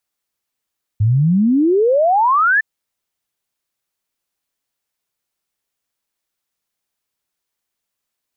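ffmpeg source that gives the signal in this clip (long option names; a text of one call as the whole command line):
ffmpeg -f lavfi -i "aevalsrc='0.299*clip(min(t,1.61-t)/0.01,0,1)*sin(2*PI*100*1.61/log(1800/100)*(exp(log(1800/100)*t/1.61)-1))':duration=1.61:sample_rate=44100" out.wav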